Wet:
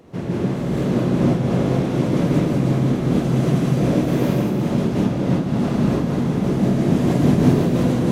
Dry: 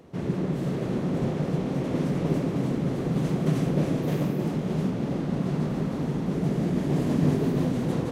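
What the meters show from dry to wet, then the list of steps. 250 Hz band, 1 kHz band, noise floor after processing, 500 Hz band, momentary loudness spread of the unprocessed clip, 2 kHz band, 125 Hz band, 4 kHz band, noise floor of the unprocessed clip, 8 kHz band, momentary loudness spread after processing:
+8.0 dB, +8.0 dB, -24 dBFS, +7.5 dB, 4 LU, +8.0 dB, +7.5 dB, +8.0 dB, -31 dBFS, +8.0 dB, 4 LU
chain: non-linear reverb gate 0.22 s rising, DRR -3 dB; noise-modulated level, depth 55%; gain +6 dB

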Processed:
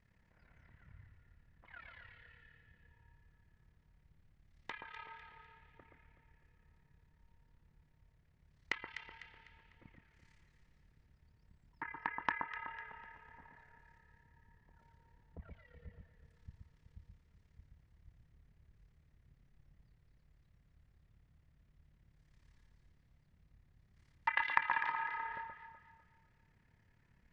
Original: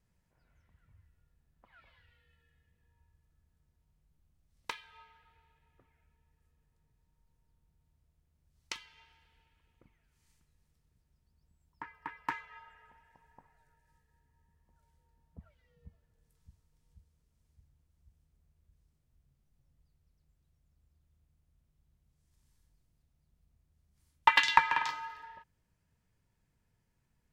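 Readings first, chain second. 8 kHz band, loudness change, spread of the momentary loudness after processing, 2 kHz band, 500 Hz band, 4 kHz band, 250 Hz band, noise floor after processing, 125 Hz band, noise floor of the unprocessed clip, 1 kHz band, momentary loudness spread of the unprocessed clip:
under -15 dB, -9.5 dB, 23 LU, -4.0 dB, -3.5 dB, -14.5 dB, -1.0 dB, -72 dBFS, +2.5 dB, -77 dBFS, -7.0 dB, 22 LU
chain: treble ducked by the level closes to 2200 Hz, closed at -43 dBFS; LPF 4300 Hz 12 dB/oct; bell 1900 Hz +8.5 dB 0.61 oct; compressor 2.5:1, threshold -42 dBFS, peak gain reduction 18 dB; AM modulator 35 Hz, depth 70%; echo with dull and thin repeats by turns 0.125 s, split 1400 Hz, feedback 60%, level -4 dB; gain +7.5 dB

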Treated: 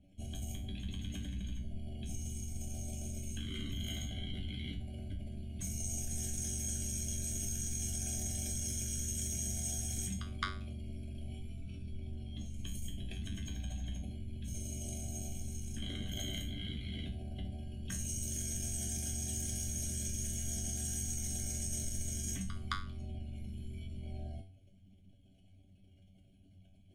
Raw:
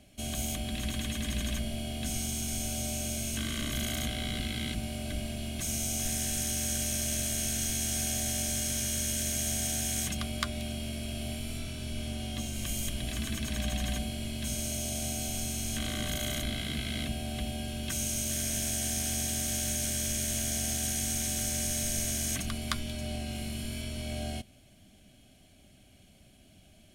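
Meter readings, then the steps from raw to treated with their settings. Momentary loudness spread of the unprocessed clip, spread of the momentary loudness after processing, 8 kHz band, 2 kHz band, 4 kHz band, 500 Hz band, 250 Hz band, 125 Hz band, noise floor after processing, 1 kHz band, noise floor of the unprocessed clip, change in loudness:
7 LU, 9 LU, -7.0 dB, -12.5 dB, -11.5 dB, -12.5 dB, -8.5 dB, -3.5 dB, -62 dBFS, -9.0 dB, -58 dBFS, -7.5 dB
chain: formant sharpening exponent 2; resonator 95 Hz, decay 0.36 s, harmonics all, mix 90%; gain +6 dB

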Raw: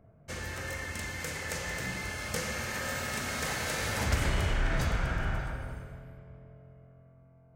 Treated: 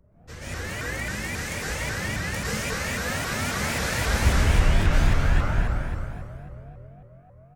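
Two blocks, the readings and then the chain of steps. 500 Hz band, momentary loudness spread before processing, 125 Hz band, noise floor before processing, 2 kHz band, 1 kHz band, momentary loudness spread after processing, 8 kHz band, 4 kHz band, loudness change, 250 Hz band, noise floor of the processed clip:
+6.0 dB, 14 LU, +9.0 dB, -58 dBFS, +6.0 dB, +6.0 dB, 18 LU, +5.5 dB, +5.5 dB, +7.0 dB, +8.0 dB, -51 dBFS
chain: low shelf 120 Hz +8.5 dB; flange 0.72 Hz, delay 3.6 ms, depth 7.9 ms, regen -62%; on a send: echo 0.222 s -9.5 dB; on the sum: plate-style reverb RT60 1.7 s, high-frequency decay 0.9×, pre-delay 0.105 s, DRR -9 dB; shaped vibrato saw up 3.7 Hz, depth 250 cents

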